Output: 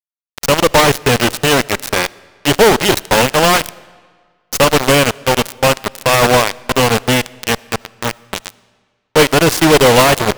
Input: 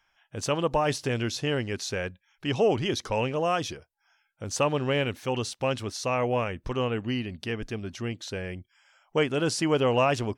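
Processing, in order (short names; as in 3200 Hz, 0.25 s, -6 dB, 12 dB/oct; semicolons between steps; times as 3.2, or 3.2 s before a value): added harmonics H 3 -29 dB, 6 -24 dB, 7 -16 dB, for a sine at -11.5 dBFS; fuzz box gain 50 dB, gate -42 dBFS; companded quantiser 4-bit; on a send: reverb RT60 1.7 s, pre-delay 30 ms, DRR 23 dB; on the sum: gain +7.5 dB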